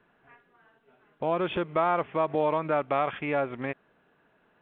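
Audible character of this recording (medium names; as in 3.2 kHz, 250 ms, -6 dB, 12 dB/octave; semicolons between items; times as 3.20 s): noise floor -67 dBFS; spectral tilt -4.5 dB/octave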